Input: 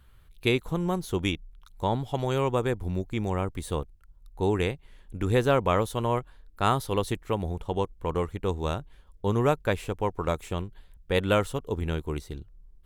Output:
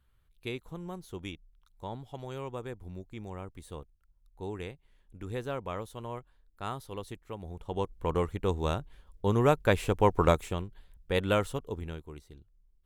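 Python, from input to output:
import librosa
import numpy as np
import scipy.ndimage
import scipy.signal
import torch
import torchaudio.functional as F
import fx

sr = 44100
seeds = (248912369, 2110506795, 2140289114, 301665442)

y = fx.gain(x, sr, db=fx.line((7.39, -13.0), (7.96, -1.0), (9.4, -1.0), (10.23, 6.0), (10.59, -3.5), (11.57, -3.5), (12.11, -14.0)))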